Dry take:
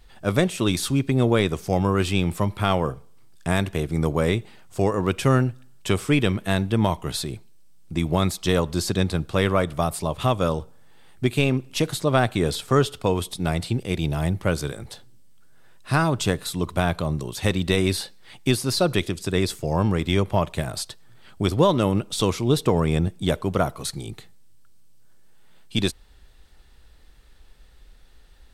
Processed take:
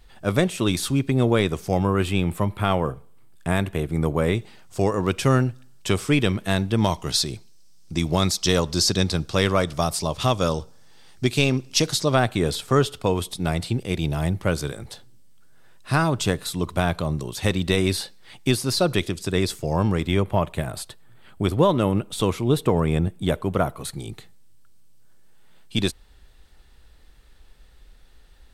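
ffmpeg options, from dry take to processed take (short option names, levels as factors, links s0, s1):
-af "asetnsamples=n=441:p=0,asendcmd='1.84 equalizer g -7.5;4.35 equalizer g 4;6.78 equalizer g 12.5;12.15 equalizer g 1;20.07 equalizer g -8;23.99 equalizer g -0.5',equalizer=f=5400:t=o:w=0.93:g=-0.5"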